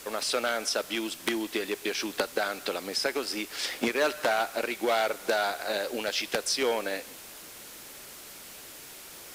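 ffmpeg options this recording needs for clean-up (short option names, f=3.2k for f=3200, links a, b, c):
-af "afwtdn=0.0056"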